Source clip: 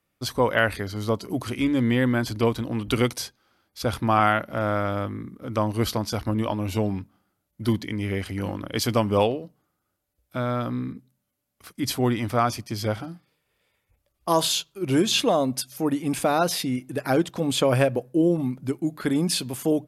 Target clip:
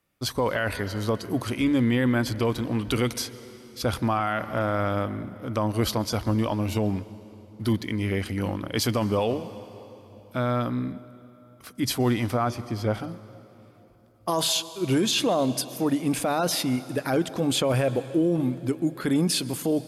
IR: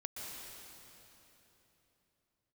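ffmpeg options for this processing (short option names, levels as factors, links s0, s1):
-filter_complex "[0:a]asettb=1/sr,asplit=3[s0][s1][s2];[s0]atrim=end=6.624[s3];[s1]atrim=start=6.62:end=7.94,asetpts=PTS-STARTPTS,afade=t=in:d=0.004:c=qsin,afade=t=out:st=1.316:d=0.004:c=qsin,aeval=exprs='sgn(val(0))*max(abs(val(0))-0.00178,0)':c=same[s4];[s2]atrim=start=7.936[s5];[s3][s4]acrossfade=d=0.004:c1=hsin:c2=qsin[s6];[s6][s5]acrossfade=d=0.004:c1=qsin:c2=hsin,asettb=1/sr,asplit=3[s7][s8][s9];[s7]atrim=end=12.344[s10];[s8]atrim=start=12.34:end=12.94,asetpts=PTS-STARTPTS,afade=t=in:d=0.004:c=qsin,afade=t=out:st=0.596:d=0.004:c=qsin,highshelf=f=2600:g=-11.5[s11];[s9]atrim=start=12.936[s12];[s10][s11]acrossfade=d=0.004:c1=hsin:c2=qsin[s13];[s13][s12]acrossfade=d=0.004:c1=qsin:c2=hsin,asplit=2[s14][s15];[1:a]atrim=start_sample=2205[s16];[s15][s16]afir=irnorm=-1:irlink=0,volume=0.188[s17];[s14][s17]amix=inputs=2:normalize=0,alimiter=limit=0.178:level=0:latency=1:release=13"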